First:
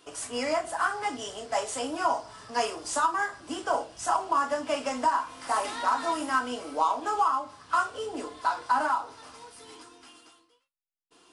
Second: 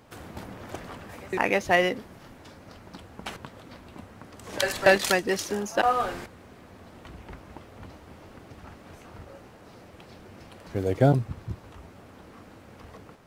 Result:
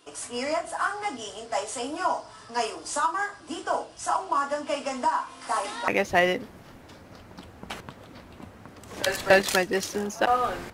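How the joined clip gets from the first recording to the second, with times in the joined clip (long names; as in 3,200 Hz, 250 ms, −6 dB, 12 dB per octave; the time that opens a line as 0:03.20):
first
0:05.88: continue with second from 0:01.44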